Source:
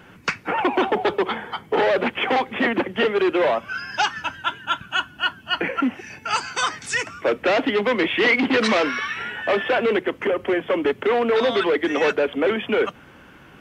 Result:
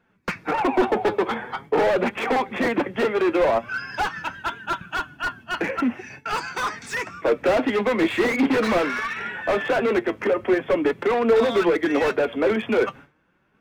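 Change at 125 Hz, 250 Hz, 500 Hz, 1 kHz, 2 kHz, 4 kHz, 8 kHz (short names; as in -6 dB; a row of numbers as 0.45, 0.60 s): +1.5, +1.0, 0.0, -1.5, -3.0, -7.5, -5.5 dB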